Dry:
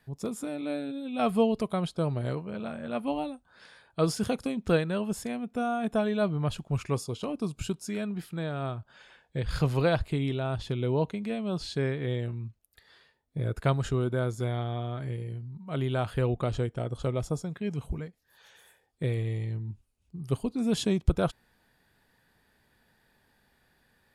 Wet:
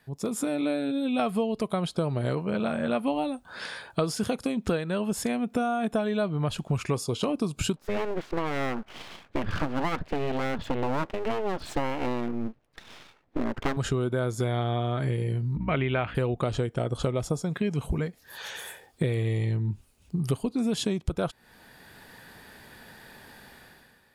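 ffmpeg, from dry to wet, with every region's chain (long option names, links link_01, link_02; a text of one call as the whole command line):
ffmpeg -i in.wav -filter_complex "[0:a]asettb=1/sr,asplit=3[link_01][link_02][link_03];[link_01]atrim=end=7.764[link_04];[link_02]atrim=start=7.76:end=13.77,asetpts=PTS-STARTPTS,afade=type=in:duration=0.004:curve=qsin,afade=type=out:start_time=6.006:duration=0.004:curve=qsin,lowpass=1900,equalizer=frequency=160:width_type=o:width=0.47:gain=-4.5,aeval=exprs='abs(val(0))':channel_layout=same[link_05];[link_03]atrim=start=13.766[link_06];[link_04][link_05]acrossfade=duration=0.004:curve1=hsin:curve2=qsin[link_07];[link_07][link_06]acrossfade=duration=0.004:curve1=qsin:curve2=hsin,asettb=1/sr,asplit=3[link_08][link_09][link_10];[link_08]atrim=end=15.564[link_11];[link_09]atrim=start=15.56:end=16.15,asetpts=PTS-STARTPTS,afade=type=in:duration=0.004:curve=qsin,afade=type=out:start_time=0.586:duration=0.004:curve=qsin,agate=range=-33dB:threshold=-42dB:ratio=3:release=100:detection=peak,lowpass=frequency=2300:width_type=q:width=3.5,aeval=exprs='val(0)+0.00501*(sin(2*PI*60*n/s)+sin(2*PI*2*60*n/s)/2+sin(2*PI*3*60*n/s)/3+sin(2*PI*4*60*n/s)/4+sin(2*PI*5*60*n/s)/5)':channel_layout=same[link_12];[link_10]atrim=start=16.146[link_13];[link_11][link_12]acrossfade=duration=0.004:curve1=hsin:curve2=qsin[link_14];[link_14][link_13]acrossfade=duration=0.004:curve1=qsin:curve2=hsin,dynaudnorm=framelen=100:gausssize=11:maxgain=15dB,lowshelf=frequency=98:gain=-8,acompressor=threshold=-29dB:ratio=6,volume=4dB" out.wav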